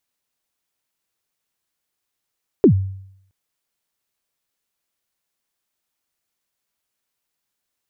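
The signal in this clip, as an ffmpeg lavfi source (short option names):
-f lavfi -i "aevalsrc='0.562*pow(10,-3*t/0.71)*sin(2*PI*(450*0.09/log(96/450)*(exp(log(96/450)*min(t,0.09)/0.09)-1)+96*max(t-0.09,0)))':d=0.67:s=44100"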